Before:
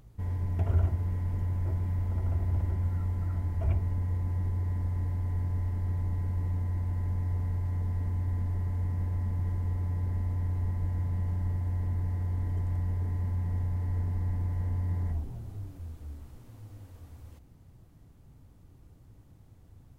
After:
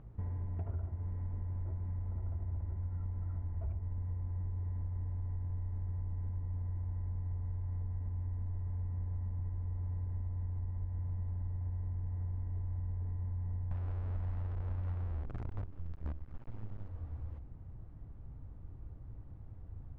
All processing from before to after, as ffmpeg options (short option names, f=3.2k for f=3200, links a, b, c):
-filter_complex "[0:a]asettb=1/sr,asplit=3[a][b][c];[a]atrim=end=13.714[d];[b]atrim=start=13.71:end=16.88,asetpts=PTS-STARTPTS,afade=t=in:d=0.004:c=qsin,afade=t=out:st=3.166:d=0.004:c=qsin,tremolo=f=1.7:d=0.33,acontrast=70,acrusher=bits=6:dc=4:mix=0:aa=0.000001[e];[c]atrim=start=16.876[f];[d][e]acrossfade=d=0.004:c1=hsin:c2=qsin[g];[g][f]acrossfade=d=0.004:c1=qsin:c2=hsin,lowpass=1.5k,asubboost=boost=2:cutoff=110,acompressor=threshold=-38dB:ratio=6,volume=2dB"